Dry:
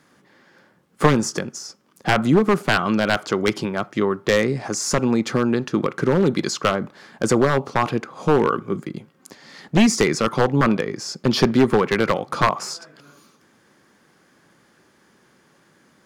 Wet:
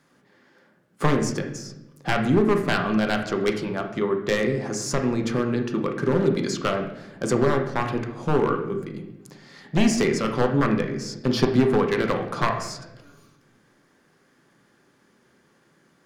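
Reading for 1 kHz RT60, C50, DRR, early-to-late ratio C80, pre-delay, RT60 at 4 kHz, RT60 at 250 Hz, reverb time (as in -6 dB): 0.75 s, 7.0 dB, 3.5 dB, 10.0 dB, 5 ms, 0.70 s, 1.4 s, 0.90 s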